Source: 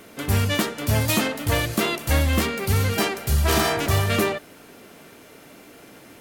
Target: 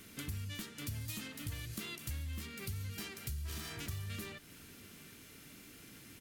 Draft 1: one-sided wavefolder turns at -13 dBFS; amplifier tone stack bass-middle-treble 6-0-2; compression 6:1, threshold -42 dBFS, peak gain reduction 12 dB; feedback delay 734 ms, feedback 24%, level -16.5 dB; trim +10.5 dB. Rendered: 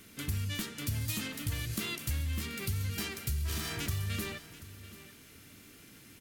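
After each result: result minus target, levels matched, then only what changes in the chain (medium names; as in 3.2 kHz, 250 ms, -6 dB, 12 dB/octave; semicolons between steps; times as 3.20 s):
compression: peak gain reduction -7.5 dB; echo-to-direct +7.5 dB
change: compression 6:1, threshold -51 dBFS, peak gain reduction 19.5 dB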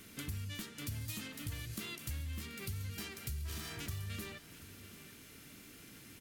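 echo-to-direct +7.5 dB
change: feedback delay 734 ms, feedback 24%, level -24 dB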